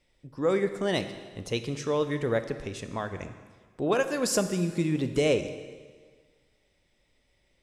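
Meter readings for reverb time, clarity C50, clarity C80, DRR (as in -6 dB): 1.6 s, 10.5 dB, 11.5 dB, 9.0 dB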